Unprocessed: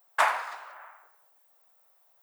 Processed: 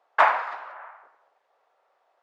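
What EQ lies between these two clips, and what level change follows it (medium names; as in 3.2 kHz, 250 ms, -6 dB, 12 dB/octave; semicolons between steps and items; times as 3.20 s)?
distance through air 66 m; tape spacing loss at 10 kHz 24 dB; +8.5 dB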